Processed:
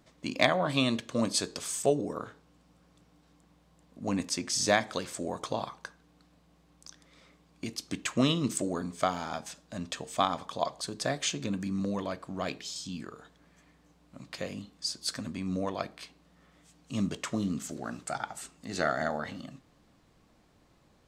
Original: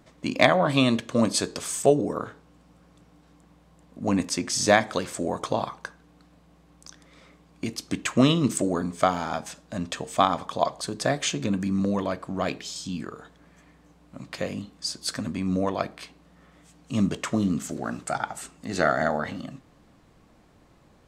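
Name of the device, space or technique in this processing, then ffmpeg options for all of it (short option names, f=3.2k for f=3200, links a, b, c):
presence and air boost: -af "equalizer=f=4.5k:t=o:w=1.6:g=4,highshelf=f=11k:g=4,volume=-7dB"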